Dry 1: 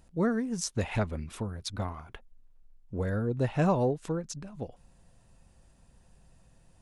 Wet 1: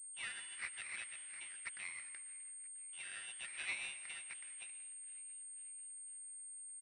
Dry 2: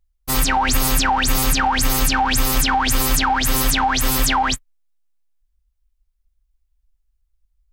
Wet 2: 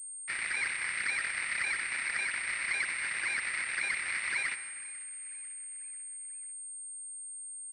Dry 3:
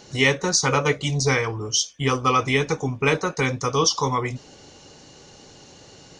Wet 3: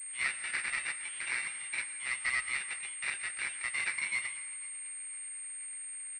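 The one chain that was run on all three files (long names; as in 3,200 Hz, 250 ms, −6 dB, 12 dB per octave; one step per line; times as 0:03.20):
wavefolder on the positive side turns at −19 dBFS
downward expander −52 dBFS
in parallel at −1.5 dB: downward compressor, threshold −29 dBFS
on the sum: sample-rate reduction 3,200 Hz, jitter 0%
four-pole ladder high-pass 1,900 Hz, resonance 65%
on a send: echo with shifted repeats 493 ms, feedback 57%, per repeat +32 Hz, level −21.5 dB
on the sum: dense smooth reverb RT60 1.3 s, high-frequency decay 0.7×, pre-delay 105 ms, DRR 12 dB
switching amplifier with a slow clock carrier 8,600 Hz
level −3 dB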